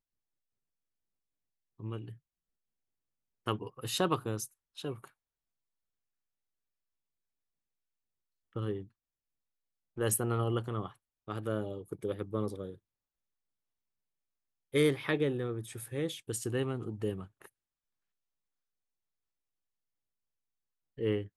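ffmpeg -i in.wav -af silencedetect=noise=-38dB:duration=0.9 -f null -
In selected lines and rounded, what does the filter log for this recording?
silence_start: 0.00
silence_end: 1.80 | silence_duration: 1.80
silence_start: 2.09
silence_end: 3.47 | silence_duration: 1.38
silence_start: 5.05
silence_end: 8.56 | silence_duration: 3.51
silence_start: 8.82
silence_end: 9.98 | silence_duration: 1.16
silence_start: 12.71
silence_end: 14.74 | silence_duration: 2.02
silence_start: 17.45
silence_end: 20.99 | silence_duration: 3.54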